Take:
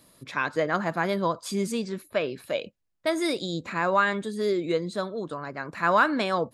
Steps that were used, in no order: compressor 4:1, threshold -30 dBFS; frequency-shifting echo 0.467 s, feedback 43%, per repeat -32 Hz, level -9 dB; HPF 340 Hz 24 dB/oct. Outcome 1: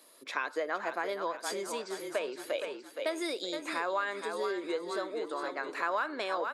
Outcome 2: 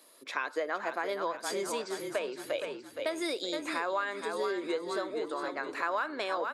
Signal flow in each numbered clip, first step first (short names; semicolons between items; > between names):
frequency-shifting echo > compressor > HPF; HPF > frequency-shifting echo > compressor